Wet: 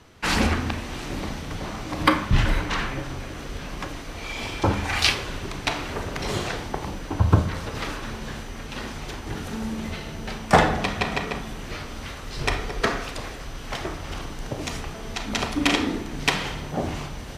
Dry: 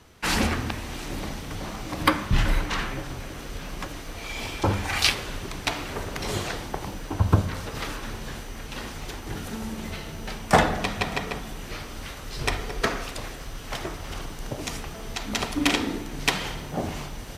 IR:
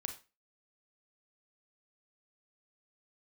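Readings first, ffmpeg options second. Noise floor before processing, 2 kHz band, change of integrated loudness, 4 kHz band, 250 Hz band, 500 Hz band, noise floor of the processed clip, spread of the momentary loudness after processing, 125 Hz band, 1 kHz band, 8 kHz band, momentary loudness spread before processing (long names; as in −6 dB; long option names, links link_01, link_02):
−38 dBFS, +2.0 dB, +2.0 dB, +1.0 dB, +2.5 dB, +2.0 dB, −36 dBFS, 14 LU, +2.5 dB, +2.0 dB, −1.0 dB, 14 LU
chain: -filter_complex "[0:a]highshelf=frequency=9700:gain=-10.5,asplit=2[link_01][link_02];[1:a]atrim=start_sample=2205[link_03];[link_02][link_03]afir=irnorm=-1:irlink=0,volume=3dB[link_04];[link_01][link_04]amix=inputs=2:normalize=0,volume=-4.5dB"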